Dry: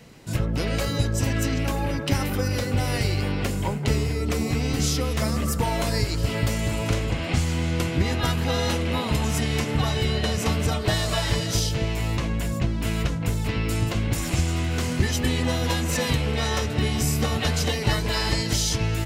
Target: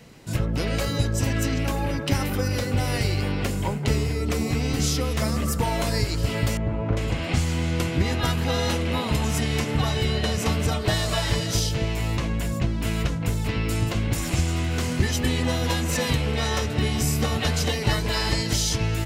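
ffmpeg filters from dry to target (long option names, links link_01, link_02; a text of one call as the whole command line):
ffmpeg -i in.wav -filter_complex "[0:a]asettb=1/sr,asplit=3[link_01][link_02][link_03];[link_01]atrim=end=6.574[link_04];[link_02]atrim=start=6.57:end=6.97,asetpts=PTS-STARTPTS,afade=type=in:duration=0.004:curve=qsin,afade=type=out:start_time=0.396:duration=0.004:curve=qsin,lowpass=1200[link_05];[link_03]atrim=start=6.966[link_06];[link_04][link_05]acrossfade=duration=0.004:curve1=hsin:curve2=qsin[link_07];[link_07][link_06]acrossfade=duration=0.004:curve1=qsin:curve2=hsin" out.wav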